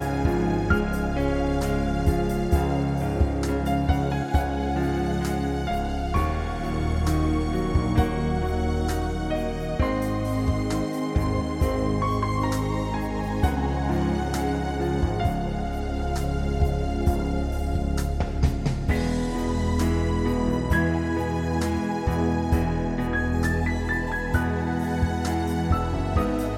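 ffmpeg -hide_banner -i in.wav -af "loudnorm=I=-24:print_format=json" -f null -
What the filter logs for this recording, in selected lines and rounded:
"input_i" : "-25.4",
"input_tp" : "-8.2",
"input_lra" : "1.6",
"input_thresh" : "-35.4",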